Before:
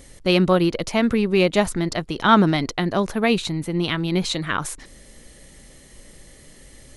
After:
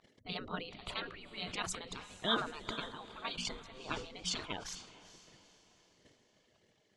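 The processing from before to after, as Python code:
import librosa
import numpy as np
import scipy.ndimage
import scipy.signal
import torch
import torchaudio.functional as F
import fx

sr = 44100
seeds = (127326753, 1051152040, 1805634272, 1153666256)

p1 = fx.envelope_sharpen(x, sr, power=2.0)
p2 = F.preemphasis(torch.from_numpy(p1), 0.97).numpy()
p3 = fx.hum_notches(p2, sr, base_hz=60, count=4)
p4 = fx.spec_gate(p3, sr, threshold_db=-20, keep='weak')
p5 = fx.peak_eq(p4, sr, hz=2000.0, db=-6.0, octaves=1.1)
p6 = fx.notch(p5, sr, hz=550.0, q=13.0)
p7 = fx.level_steps(p6, sr, step_db=19)
p8 = p6 + (p7 * librosa.db_to_amplitude(1.0))
p9 = fx.env_lowpass(p8, sr, base_hz=1900.0, full_db=-32.0)
p10 = p9 + fx.echo_diffused(p9, sr, ms=455, feedback_pct=44, wet_db=-15, dry=0)
p11 = fx.sustainer(p10, sr, db_per_s=99.0)
y = p11 * librosa.db_to_amplitude(15.0)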